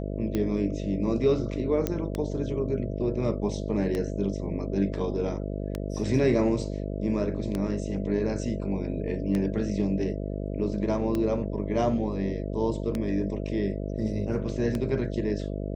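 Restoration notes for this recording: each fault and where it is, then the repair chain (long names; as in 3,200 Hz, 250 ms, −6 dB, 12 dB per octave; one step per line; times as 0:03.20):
mains buzz 50 Hz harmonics 13 −32 dBFS
scratch tick 33 1/3 rpm −16 dBFS
0:01.87: click −13 dBFS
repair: click removal
hum removal 50 Hz, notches 13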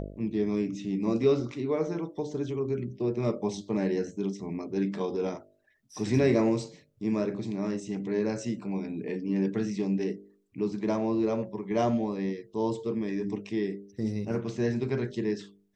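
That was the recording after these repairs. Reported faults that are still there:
none of them is left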